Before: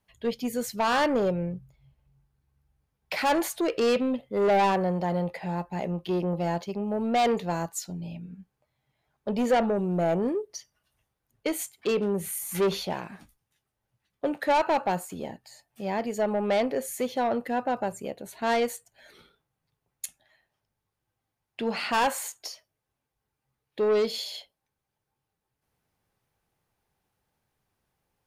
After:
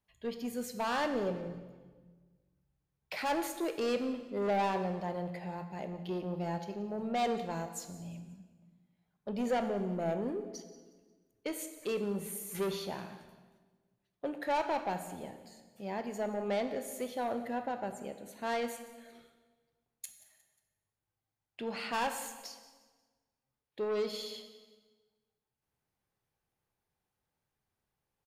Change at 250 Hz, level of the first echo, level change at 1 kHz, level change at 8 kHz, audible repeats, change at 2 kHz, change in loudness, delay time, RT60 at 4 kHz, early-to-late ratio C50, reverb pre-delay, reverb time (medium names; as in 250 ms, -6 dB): -8.0 dB, -19.0 dB, -8.5 dB, -8.5 dB, 3, -8.0 dB, -8.5 dB, 179 ms, 1.2 s, 9.5 dB, 17 ms, 1.4 s